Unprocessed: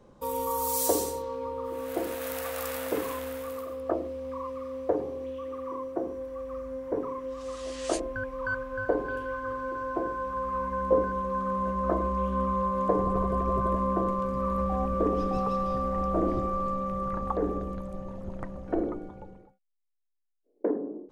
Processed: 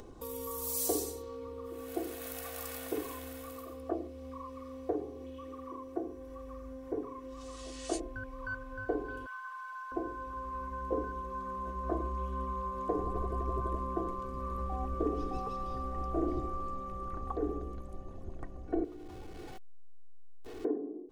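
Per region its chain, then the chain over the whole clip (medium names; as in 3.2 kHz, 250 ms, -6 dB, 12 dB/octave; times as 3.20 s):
9.26–9.92 s: steep high-pass 780 Hz 48 dB/octave + comb 4.5 ms, depth 47%
18.84–20.65 s: jump at every zero crossing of -36.5 dBFS + compression 4:1, threshold -41 dBFS + treble shelf 7.1 kHz -9.5 dB
whole clip: peaking EQ 1.3 kHz -6 dB 2.2 oct; comb 2.7 ms, depth 69%; upward compressor, threshold -33 dBFS; trim -6 dB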